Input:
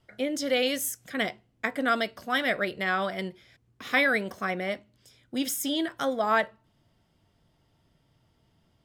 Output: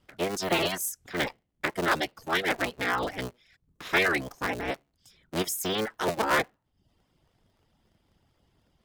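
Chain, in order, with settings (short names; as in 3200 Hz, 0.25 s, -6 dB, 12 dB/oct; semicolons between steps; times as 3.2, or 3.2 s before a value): cycle switcher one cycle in 3, inverted; reverb removal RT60 0.53 s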